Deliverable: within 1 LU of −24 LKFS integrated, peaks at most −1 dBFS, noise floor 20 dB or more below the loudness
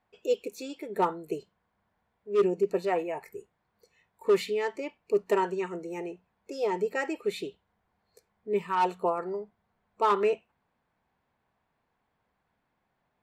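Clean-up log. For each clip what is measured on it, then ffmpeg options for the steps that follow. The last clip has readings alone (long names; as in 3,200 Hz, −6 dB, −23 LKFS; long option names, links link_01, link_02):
integrated loudness −30.0 LKFS; sample peak −16.5 dBFS; target loudness −24.0 LKFS
→ -af "volume=6dB"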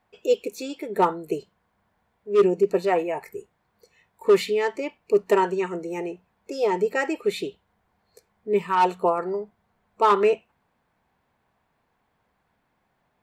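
integrated loudness −24.0 LKFS; sample peak −10.5 dBFS; background noise floor −72 dBFS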